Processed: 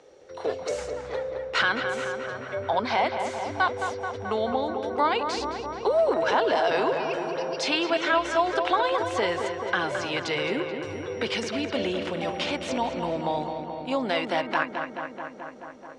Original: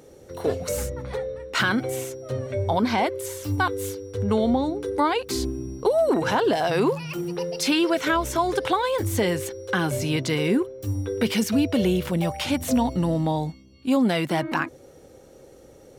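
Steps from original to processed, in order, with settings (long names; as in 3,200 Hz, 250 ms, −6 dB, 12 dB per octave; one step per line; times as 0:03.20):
Butterworth low-pass 10,000 Hz 36 dB per octave
three-way crossover with the lows and the highs turned down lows −16 dB, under 420 Hz, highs −22 dB, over 5,900 Hz
feedback echo with a low-pass in the loop 216 ms, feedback 77%, low-pass 3,300 Hz, level −7 dB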